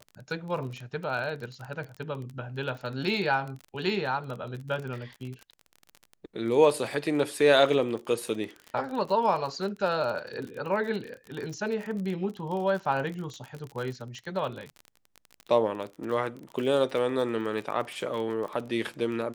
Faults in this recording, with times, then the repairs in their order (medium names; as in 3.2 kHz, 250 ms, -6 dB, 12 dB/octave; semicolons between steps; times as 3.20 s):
crackle 34 per s -34 dBFS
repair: de-click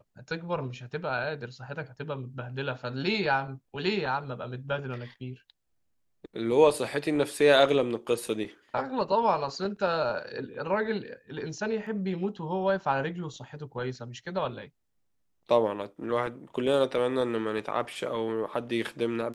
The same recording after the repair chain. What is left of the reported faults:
nothing left